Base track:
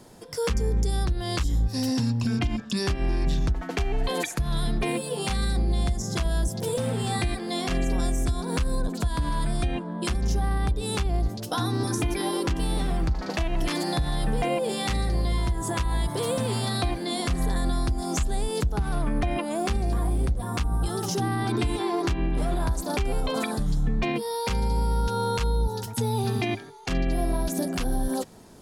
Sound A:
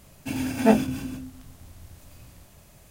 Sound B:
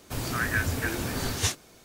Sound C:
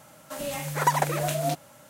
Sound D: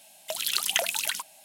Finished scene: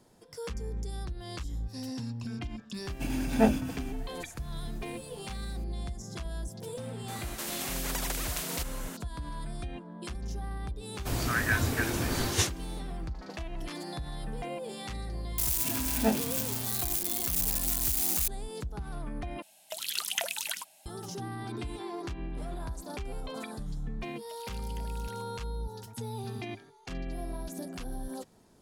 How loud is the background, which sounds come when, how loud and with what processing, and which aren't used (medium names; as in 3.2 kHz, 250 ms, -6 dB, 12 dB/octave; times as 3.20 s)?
base track -12 dB
2.74 s: add A -5 dB
7.08 s: add C -7 dB + spectrum-flattening compressor 4:1
10.95 s: add B -0.5 dB
15.38 s: add A -9 dB + zero-crossing glitches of -12.5 dBFS
19.42 s: replace with D -6 dB
24.01 s: add D -14 dB + compression 4:1, threshold -36 dBFS